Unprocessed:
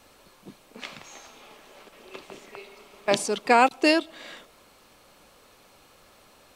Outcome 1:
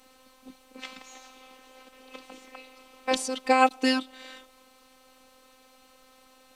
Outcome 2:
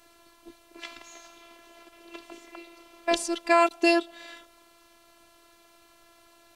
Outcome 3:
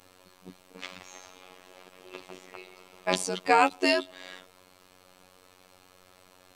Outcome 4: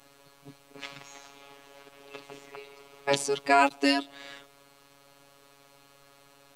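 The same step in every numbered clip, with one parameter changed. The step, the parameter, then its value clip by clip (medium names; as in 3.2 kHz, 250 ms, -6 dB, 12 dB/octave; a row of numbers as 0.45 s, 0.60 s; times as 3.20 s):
robot voice, frequency: 260 Hz, 340 Hz, 92 Hz, 140 Hz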